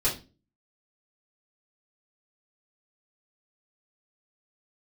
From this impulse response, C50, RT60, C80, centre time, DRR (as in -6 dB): 9.5 dB, 0.30 s, 16.5 dB, 22 ms, -9.5 dB